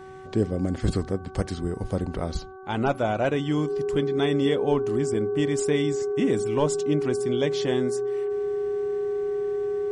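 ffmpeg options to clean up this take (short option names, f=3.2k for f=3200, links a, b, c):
-af "bandreject=f=379.2:t=h:w=4,bandreject=f=758.4:t=h:w=4,bandreject=f=1.1376k:t=h:w=4,bandreject=f=1.5168k:t=h:w=4,bandreject=f=410:w=30"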